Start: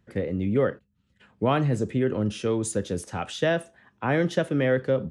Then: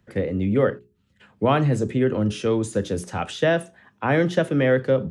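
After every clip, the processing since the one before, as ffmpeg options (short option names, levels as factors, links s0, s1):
-filter_complex "[0:a]bandreject=f=60:t=h:w=6,bandreject=f=120:t=h:w=6,bandreject=f=180:t=h:w=6,bandreject=f=240:t=h:w=6,bandreject=f=300:t=h:w=6,bandreject=f=360:t=h:w=6,bandreject=f=420:t=h:w=6,acrossover=split=130|2900[s0][s1][s2];[s2]alimiter=level_in=2.82:limit=0.0631:level=0:latency=1:release=56,volume=0.355[s3];[s0][s1][s3]amix=inputs=3:normalize=0,volume=1.58"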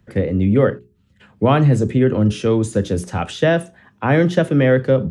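-af "lowshelf=f=220:g=6.5,volume=1.41"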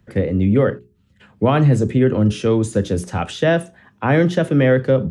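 -af "alimiter=level_in=1.68:limit=0.891:release=50:level=0:latency=1,volume=0.596"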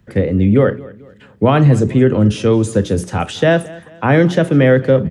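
-af "aecho=1:1:219|438|657:0.0891|0.0348|0.0136,volume=1.5"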